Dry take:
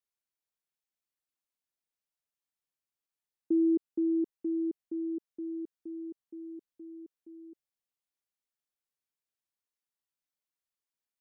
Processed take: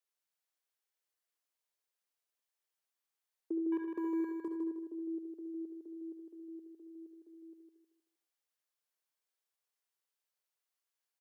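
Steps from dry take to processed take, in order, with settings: HPF 370 Hz 24 dB/oct; 3.72–4.48 sample leveller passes 2; compressor 2.5:1, threshold -36 dBFS, peak gain reduction 5 dB; feedback echo 0.156 s, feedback 32%, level -5 dB; on a send at -5 dB: reverb RT60 0.20 s, pre-delay 61 ms

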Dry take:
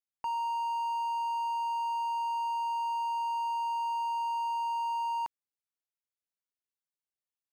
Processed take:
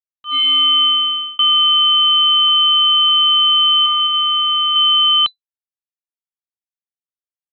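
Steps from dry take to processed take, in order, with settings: opening faded in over 1.77 s; 2.48–3.09 dynamic EQ 1500 Hz, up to +4 dB, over -51 dBFS, Q 2; AGC gain up to 12.5 dB; fuzz box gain 47 dB, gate -44 dBFS; 3.79–4.76 flutter echo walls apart 11.9 m, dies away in 1.2 s; inverted band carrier 4000 Hz; 0.84–1.39 fade out; gain +1.5 dB

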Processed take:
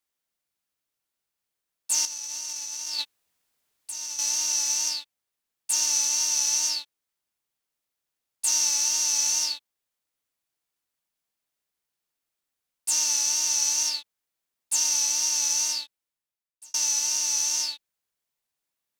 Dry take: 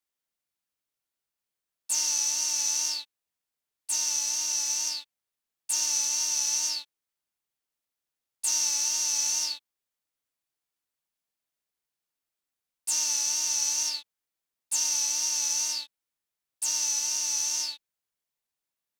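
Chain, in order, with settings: 2.05–4.19 negative-ratio compressor -37 dBFS, ratio -1; 15.69–16.74 fade out; gain +3 dB

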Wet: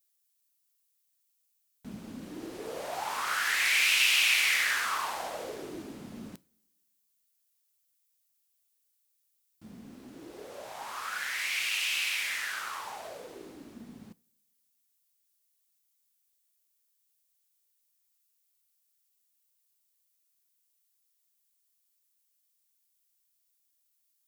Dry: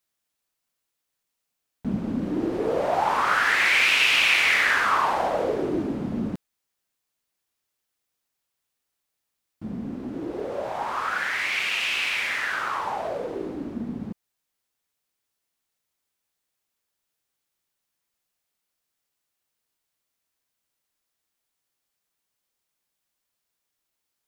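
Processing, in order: pre-emphasis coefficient 0.9; two-slope reverb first 0.37 s, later 1.5 s, from -18 dB, DRR 17 dB; gain +3.5 dB

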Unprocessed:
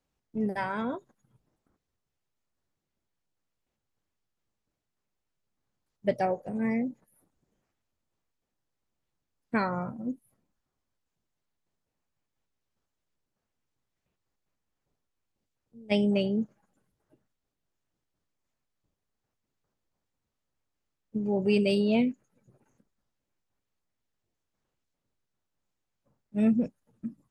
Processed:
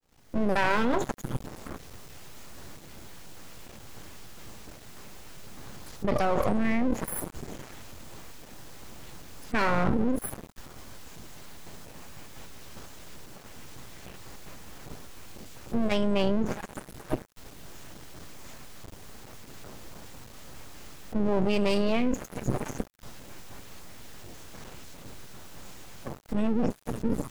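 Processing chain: opening faded in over 1.07 s; half-wave rectifier; fast leveller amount 100%

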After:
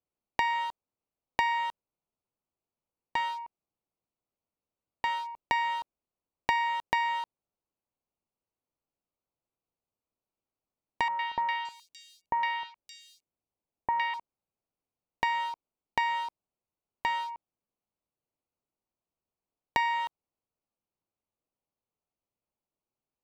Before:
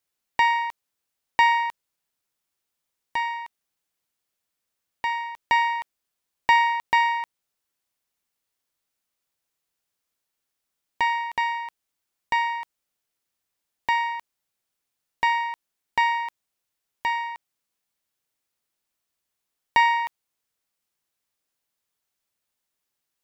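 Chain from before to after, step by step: Wiener smoothing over 25 samples; 11.08–14.14 three bands offset in time lows, mids, highs 0.11/0.57 s, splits 1400/4700 Hz; compressor 4:1, threshold -26 dBFS, peak gain reduction 10.5 dB

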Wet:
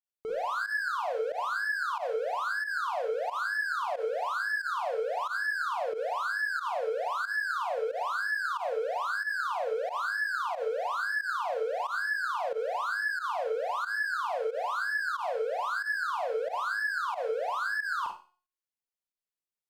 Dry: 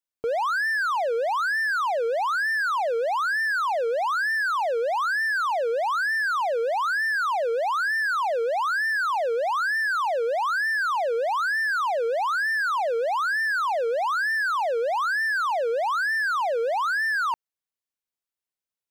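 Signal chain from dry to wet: speed mistake 25 fps video run at 24 fps; notch 810 Hz, Q 14; resonator 360 Hz, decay 0.44 s, harmonics all, mix 60%; Schroeder reverb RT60 0.33 s, combs from 32 ms, DRR 1 dB; pump 91 bpm, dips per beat 1, -15 dB, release 85 ms; gain -2 dB

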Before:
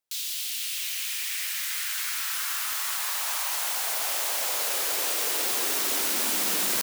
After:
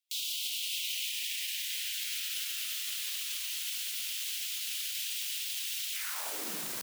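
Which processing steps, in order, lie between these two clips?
limiter -25 dBFS, peak gain reduction 10.5 dB; high-pass sweep 3000 Hz -> 90 Hz, 5.91–6.73; spectral gate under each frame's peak -25 dB strong; gain -3 dB

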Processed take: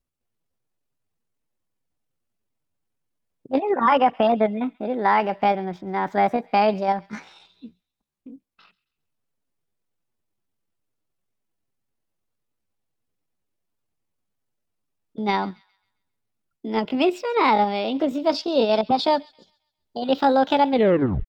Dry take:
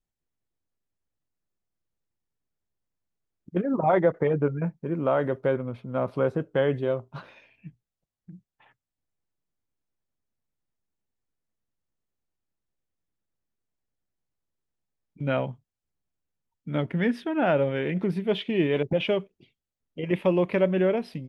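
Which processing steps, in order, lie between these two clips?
tape stop at the end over 0.57 s; in parallel at 0 dB: level quantiser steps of 12 dB; on the sum: pitch shift +7 st; thin delay 0.134 s, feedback 38%, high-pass 2100 Hz, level -20 dB

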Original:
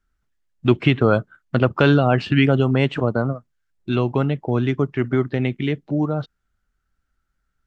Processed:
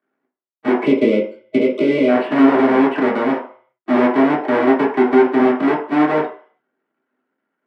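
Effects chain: half-waves squared off; LPF 3400 Hz 12 dB/oct; spectral gain 0.84–2.08, 630–2000 Hz -24 dB; HPF 240 Hz 24 dB/oct; limiter -10 dBFS, peak gain reduction 9.5 dB; reverb RT60 0.45 s, pre-delay 3 ms, DRR -6.5 dB; gain -10.5 dB

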